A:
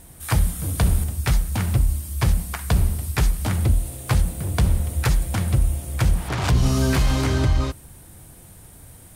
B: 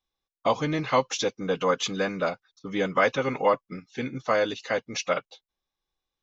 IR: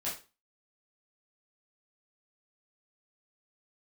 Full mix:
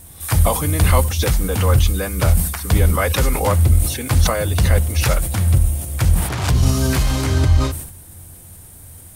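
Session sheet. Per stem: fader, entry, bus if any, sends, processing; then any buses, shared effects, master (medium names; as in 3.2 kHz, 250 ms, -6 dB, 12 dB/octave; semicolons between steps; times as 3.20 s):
+0.5 dB, 0.00 s, no send, treble shelf 6.8 kHz +8 dB
+1.0 dB, 0.00 s, no send, swell ahead of each attack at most 100 dB/s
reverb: none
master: peaking EQ 85 Hz +10.5 dB 0.24 oct; decay stretcher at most 75 dB/s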